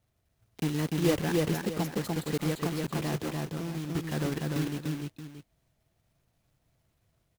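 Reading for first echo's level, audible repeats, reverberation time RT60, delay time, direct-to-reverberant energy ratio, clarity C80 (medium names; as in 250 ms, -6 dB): -3.0 dB, 2, no reverb, 295 ms, no reverb, no reverb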